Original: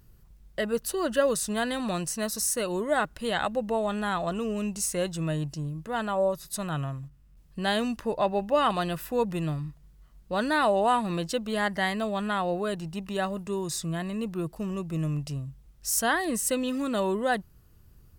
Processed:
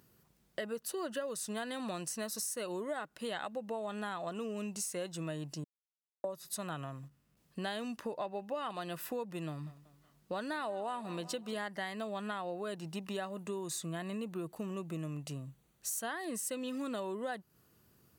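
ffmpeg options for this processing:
ffmpeg -i in.wav -filter_complex "[0:a]asettb=1/sr,asplit=3[link_01][link_02][link_03];[link_01]atrim=end=9.484[link_04];[link_02]atrim=start=9.48:end=11.64,asetpts=PTS-STARTPTS,afade=type=in:duration=0.004:curve=qsin,afade=type=out:start_time=2.156:duration=0.004:curve=qsin,aecho=1:1:186|372|558:0.0944|0.0434|0.02,atrim=end_sample=95256[link_05];[link_03]atrim=start=11.636[link_06];[link_04][link_05]acrossfade=duration=0.004:curve1=hsin:curve2=qsin[link_07];[link_07][link_06]acrossfade=duration=0.004:curve1=qsin:curve2=hsin,asettb=1/sr,asplit=3[link_08][link_09][link_10];[link_08]atrim=end=13.294[link_11];[link_09]atrim=start=13.29:end=16.09,asetpts=PTS-STARTPTS,afade=type=in:duration=0.004:curve=qsin,afade=type=out:start_time=2.796:duration=0.004:curve=qsin,bandreject=frequency=5200:width=5.2[link_12];[link_10]atrim=start=16.086[link_13];[link_11][link_12]acrossfade=duration=0.004:curve1=hsin:curve2=qsin[link_14];[link_14][link_13]acrossfade=duration=0.004:curve1=qsin:curve2=hsin,asplit=3[link_15][link_16][link_17];[link_15]atrim=end=5.64,asetpts=PTS-STARTPTS,afade=type=out:start_time=5.636:duration=0.004:curve=hsin[link_18];[link_16]atrim=start=5.64:end=6.24,asetpts=PTS-STARTPTS,volume=0[link_19];[link_17]atrim=start=6.24,asetpts=PTS-STARTPTS,afade=type=in:duration=0.004:curve=hsin[link_20];[link_18][link_19][link_20]concat=n=3:v=0:a=1,highpass=200,acompressor=threshold=-35dB:ratio=6,volume=-1dB" out.wav

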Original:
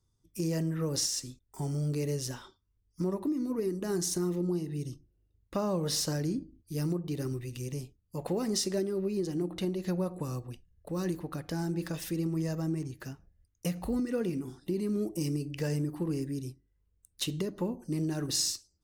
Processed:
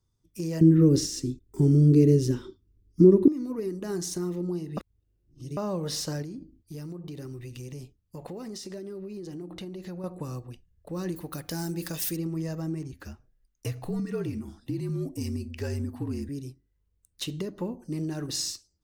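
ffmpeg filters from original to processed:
ffmpeg -i in.wav -filter_complex "[0:a]asettb=1/sr,asplit=3[link_01][link_02][link_03];[link_01]atrim=end=0.614[link_04];[link_02]atrim=start=0.61:end=3.28,asetpts=PTS-STARTPTS,afade=type=in:duration=0.004:curve=qsin,afade=type=out:start_time=2.666:duration=0.004:curve=qsin,lowshelf=frequency=500:width_type=q:width=3:gain=11.5[link_05];[link_03]atrim=start=3.276[link_06];[link_04][link_05]acrossfade=duration=0.004:curve1=hsin:curve2=qsin[link_07];[link_07][link_06]acrossfade=duration=0.004:curve1=qsin:curve2=hsin,asettb=1/sr,asplit=3[link_08][link_09][link_10];[link_08]atrim=end=6.224[link_11];[link_09]atrim=start=6.22:end=10.04,asetpts=PTS-STARTPTS,afade=type=in:duration=0.004:curve=qsin,afade=type=out:start_time=3.816:duration=0.004:curve=qsin,acompressor=threshold=-35dB:ratio=6:attack=3.2:release=140:knee=1:detection=peak[link_12];[link_10]atrim=start=10.036[link_13];[link_11][link_12]acrossfade=duration=0.004:curve1=hsin:curve2=qsin[link_14];[link_14][link_13]acrossfade=duration=0.004:curve1=qsin:curve2=hsin,asettb=1/sr,asplit=3[link_15][link_16][link_17];[link_15]atrim=end=11.164[link_18];[link_16]atrim=start=11.16:end=12.17,asetpts=PTS-STARTPTS,afade=type=in:duration=0.004:curve=qsin,afade=type=out:start_time=1.006:duration=0.004:curve=qsin,aemphasis=mode=production:type=75kf[link_19];[link_17]atrim=start=12.166[link_20];[link_18][link_19]acrossfade=duration=0.004:curve1=hsin:curve2=qsin[link_21];[link_21][link_20]acrossfade=duration=0.004:curve1=qsin:curve2=hsin,asettb=1/sr,asplit=3[link_22][link_23][link_24];[link_22]atrim=end=12.924[link_25];[link_23]atrim=start=12.92:end=16.29,asetpts=PTS-STARTPTS,afade=type=in:duration=0.004:curve=qsin,afade=type=out:start_time=3.366:duration=0.004:curve=qsin,afreqshift=-53[link_26];[link_24]atrim=start=16.286[link_27];[link_25][link_26]acrossfade=duration=0.004:curve1=hsin:curve2=qsin[link_28];[link_28][link_27]acrossfade=duration=0.004:curve1=qsin:curve2=hsin,asplit=3[link_29][link_30][link_31];[link_29]atrim=end=4.772[link_32];[link_30]atrim=start=4.768:end=5.572,asetpts=PTS-STARTPTS,areverse[link_33];[link_31]atrim=start=5.568[link_34];[link_32][link_33]acrossfade=duration=0.004:curve1=hsin:curve2=hsin[link_35];[link_35][link_34]acrossfade=duration=0.004:curve1=hsin:curve2=hsin,equalizer=frequency=11000:width=0.75:gain=-4" out.wav

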